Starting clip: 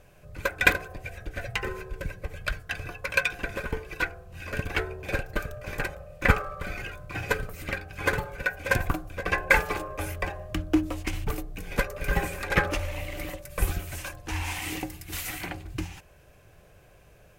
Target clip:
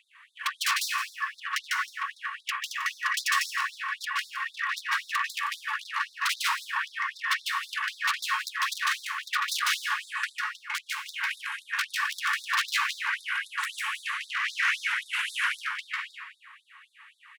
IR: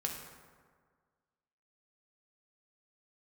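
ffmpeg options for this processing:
-filter_complex "[0:a]highshelf=f=5.3k:t=q:w=3:g=-11.5,bandreject=f=144.7:t=h:w=4,bandreject=f=289.4:t=h:w=4,bandreject=f=434.1:t=h:w=4,bandreject=f=578.8:t=h:w=4,bandreject=f=723.5:t=h:w=4,bandreject=f=868.2:t=h:w=4,bandreject=f=1.0129k:t=h:w=4,bandreject=f=1.1576k:t=h:w=4,bandreject=f=1.3023k:t=h:w=4,bandreject=f=1.447k:t=h:w=4,bandreject=f=1.5917k:t=h:w=4,bandreject=f=1.7364k:t=h:w=4,bandreject=f=1.8811k:t=h:w=4,bandreject=f=2.0258k:t=h:w=4,bandreject=f=2.1705k:t=h:w=4,bandreject=f=2.3152k:t=h:w=4,bandreject=f=2.4599k:t=h:w=4,bandreject=f=2.6046k:t=h:w=4,bandreject=f=2.7493k:t=h:w=4,bandreject=f=2.894k:t=h:w=4,bandreject=f=3.0387k:t=h:w=4,bandreject=f=3.1834k:t=h:w=4,bandreject=f=3.3281k:t=h:w=4,bandreject=f=3.4728k:t=h:w=4,bandreject=f=3.6175k:t=h:w=4,bandreject=f=3.7622k:t=h:w=4,acontrast=51,asetrate=32097,aresample=44100,atempo=1.37395,aeval=exprs='(mod(3.35*val(0)+1,2)-1)/3.35':c=same,asplit=2[a][b];[b]highpass=f=720:p=1,volume=16dB,asoftclip=type=tanh:threshold=-10.5dB[c];[a][c]amix=inputs=2:normalize=0,lowpass=f=5k:p=1,volume=-6dB,volume=15.5dB,asoftclip=hard,volume=-15.5dB,aecho=1:1:167:0.237,asplit=2[d][e];[1:a]atrim=start_sample=2205,adelay=149[f];[e][f]afir=irnorm=-1:irlink=0,volume=-0.5dB[g];[d][g]amix=inputs=2:normalize=0,afftfilt=real='re*gte(b*sr/1024,850*pow(3600/850,0.5+0.5*sin(2*PI*3.8*pts/sr)))':imag='im*gte(b*sr/1024,850*pow(3600/850,0.5+0.5*sin(2*PI*3.8*pts/sr)))':win_size=1024:overlap=0.75,volume=-7dB"

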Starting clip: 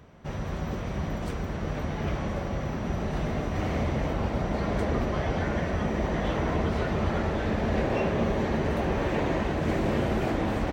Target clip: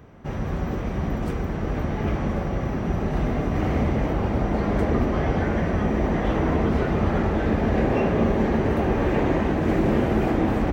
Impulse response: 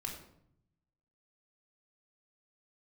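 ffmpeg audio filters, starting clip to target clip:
-filter_complex "[0:a]equalizer=f=250:t=o:w=1:g=4,equalizer=f=4k:t=o:w=1:g=-5,equalizer=f=8k:t=o:w=1:g=-4,asplit=2[a][b];[1:a]atrim=start_sample=2205[c];[b][c]afir=irnorm=-1:irlink=0,volume=-6dB[d];[a][d]amix=inputs=2:normalize=0,volume=1dB"

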